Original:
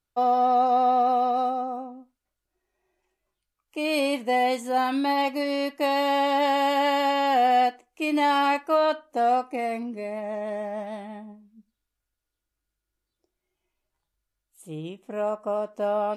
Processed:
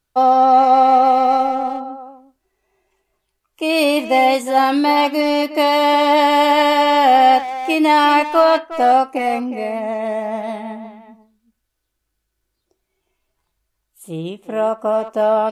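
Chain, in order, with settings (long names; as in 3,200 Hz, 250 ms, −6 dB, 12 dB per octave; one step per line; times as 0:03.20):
wrong playback speed 24 fps film run at 25 fps
far-end echo of a speakerphone 360 ms, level −11 dB
level +9 dB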